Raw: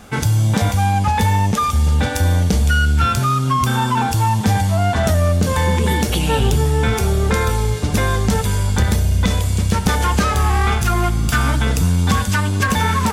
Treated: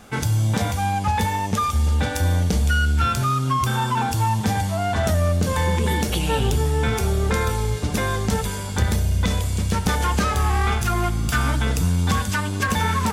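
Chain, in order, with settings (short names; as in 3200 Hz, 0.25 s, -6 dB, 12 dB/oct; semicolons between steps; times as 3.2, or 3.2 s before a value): notches 50/100/150/200/250 Hz; gain -4 dB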